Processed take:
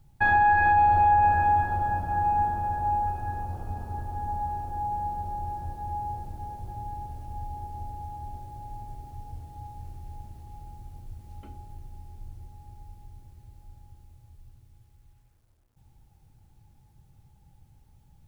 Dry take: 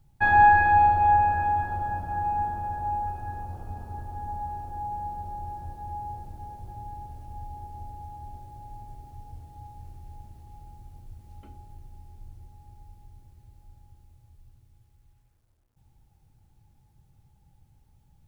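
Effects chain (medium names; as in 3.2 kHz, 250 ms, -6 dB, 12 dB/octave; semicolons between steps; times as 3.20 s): peak limiter -17 dBFS, peak gain reduction 9.5 dB; trim +3 dB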